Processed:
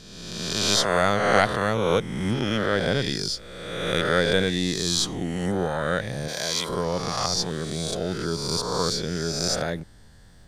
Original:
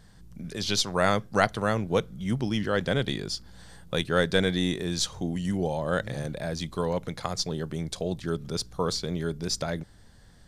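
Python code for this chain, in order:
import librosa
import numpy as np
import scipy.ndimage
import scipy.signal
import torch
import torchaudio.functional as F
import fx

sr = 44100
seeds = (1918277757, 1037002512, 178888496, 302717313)

y = fx.spec_swells(x, sr, rise_s=1.44)
y = fx.tilt_eq(y, sr, slope=3.0, at=(6.28, 6.69))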